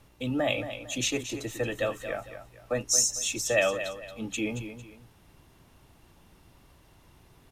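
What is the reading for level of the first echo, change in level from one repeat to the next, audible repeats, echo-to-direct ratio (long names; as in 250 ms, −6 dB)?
−10.5 dB, −9.5 dB, 2, −10.0 dB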